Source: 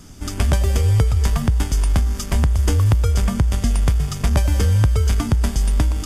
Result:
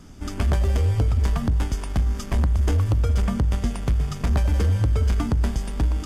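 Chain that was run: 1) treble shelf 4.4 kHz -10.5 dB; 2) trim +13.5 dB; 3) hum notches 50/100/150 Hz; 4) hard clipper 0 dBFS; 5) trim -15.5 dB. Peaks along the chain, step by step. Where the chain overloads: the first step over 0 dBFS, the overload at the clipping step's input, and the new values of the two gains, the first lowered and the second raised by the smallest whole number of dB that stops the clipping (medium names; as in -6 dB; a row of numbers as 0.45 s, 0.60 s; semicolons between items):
-6.5 dBFS, +7.0 dBFS, +8.5 dBFS, 0.0 dBFS, -15.5 dBFS; step 2, 8.5 dB; step 2 +4.5 dB, step 5 -6.5 dB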